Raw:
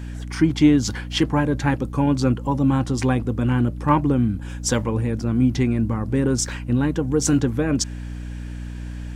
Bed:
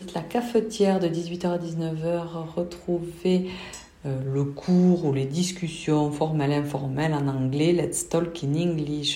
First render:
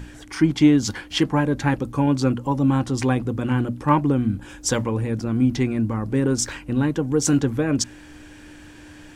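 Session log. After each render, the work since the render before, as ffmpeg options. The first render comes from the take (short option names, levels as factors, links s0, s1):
-af "bandreject=f=60:t=h:w=6,bandreject=f=120:t=h:w=6,bandreject=f=180:t=h:w=6,bandreject=f=240:t=h:w=6"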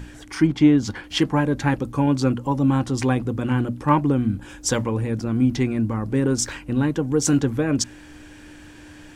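-filter_complex "[0:a]asettb=1/sr,asplit=3[s0][s1][s2];[s0]atrim=end=0.474[s3];[s1]atrim=start=0.47:end=1.04,asetpts=PTS-STARTPTS,afade=t=in:d=0.004:c=qsin,afade=t=out:st=0.566:d=0.004:c=qsin,highshelf=f=4000:g=-10[s4];[s2]atrim=start=1.036[s5];[s3][s4]acrossfade=d=0.004:c1=hsin:c2=qsin[s6];[s6][s5]acrossfade=d=0.004:c1=qsin:c2=hsin"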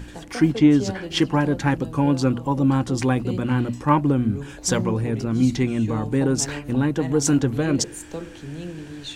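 -filter_complex "[1:a]volume=0.335[s0];[0:a][s0]amix=inputs=2:normalize=0"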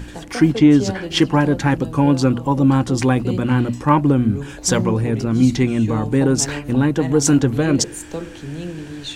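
-af "volume=1.68,alimiter=limit=0.708:level=0:latency=1"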